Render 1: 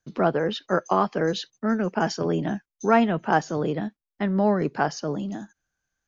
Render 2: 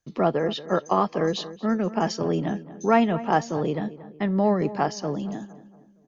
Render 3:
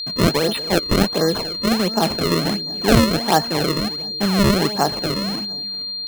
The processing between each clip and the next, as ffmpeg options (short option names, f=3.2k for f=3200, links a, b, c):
-filter_complex "[0:a]bandreject=f=1.5k:w=6.6,asplit=2[a][b];[b]adelay=231,lowpass=f=2.1k:p=1,volume=-15.5dB,asplit=2[c][d];[d]adelay=231,lowpass=f=2.1k:p=1,volume=0.45,asplit=2[e][f];[f]adelay=231,lowpass=f=2.1k:p=1,volume=0.45,asplit=2[g][h];[h]adelay=231,lowpass=f=2.1k:p=1,volume=0.45[i];[a][c][e][g][i]amix=inputs=5:normalize=0"
-af "acrusher=samples=32:mix=1:aa=0.000001:lfo=1:lforange=51.2:lforate=1.4,aeval=exprs='val(0)+0.0316*sin(2*PI*4200*n/s)':c=same,volume=5dB"